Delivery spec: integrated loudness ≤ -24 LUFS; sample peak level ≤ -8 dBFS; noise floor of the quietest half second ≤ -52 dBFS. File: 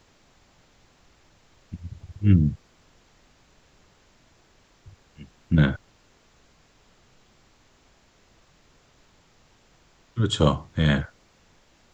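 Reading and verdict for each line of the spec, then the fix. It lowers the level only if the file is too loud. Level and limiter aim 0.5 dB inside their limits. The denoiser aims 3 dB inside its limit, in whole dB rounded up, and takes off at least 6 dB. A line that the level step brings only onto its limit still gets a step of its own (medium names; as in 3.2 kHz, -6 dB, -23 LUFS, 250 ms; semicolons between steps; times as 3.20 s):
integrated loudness -23.5 LUFS: fail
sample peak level -4.5 dBFS: fail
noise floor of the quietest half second -60 dBFS: pass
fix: trim -1 dB; peak limiter -8.5 dBFS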